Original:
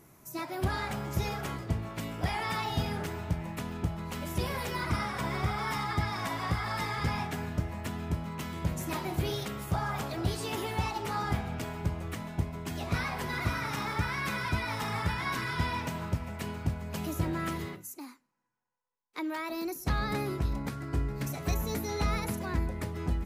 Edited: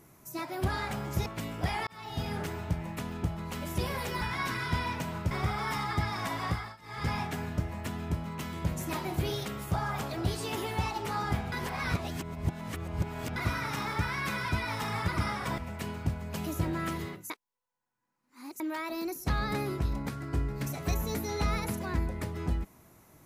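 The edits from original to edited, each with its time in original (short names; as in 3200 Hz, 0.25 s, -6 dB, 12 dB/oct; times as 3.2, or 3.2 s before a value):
1.26–1.86 cut
2.47–2.97 fade in
4.81–5.31 swap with 15.08–16.18
6.49–7.1 dip -23.5 dB, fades 0.28 s
11.52–13.36 reverse
17.9–19.2 reverse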